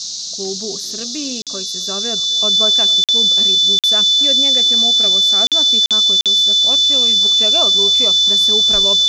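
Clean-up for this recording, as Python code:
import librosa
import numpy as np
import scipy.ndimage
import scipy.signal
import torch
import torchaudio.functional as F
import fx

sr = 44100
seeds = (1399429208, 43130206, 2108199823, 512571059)

y = fx.notch(x, sr, hz=3500.0, q=30.0)
y = fx.fix_interpolate(y, sr, at_s=(1.42, 3.04, 3.79, 5.47, 5.86, 6.21), length_ms=47.0)
y = fx.noise_reduce(y, sr, print_start_s=0.0, print_end_s=0.5, reduce_db=30.0)
y = fx.fix_echo_inverse(y, sr, delay_ms=259, level_db=-21.5)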